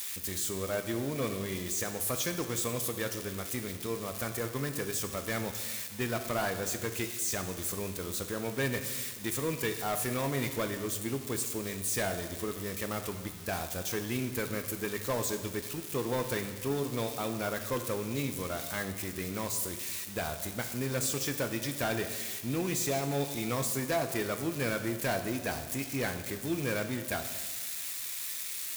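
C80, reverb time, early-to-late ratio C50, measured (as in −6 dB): 10.5 dB, 1.4 s, 9.0 dB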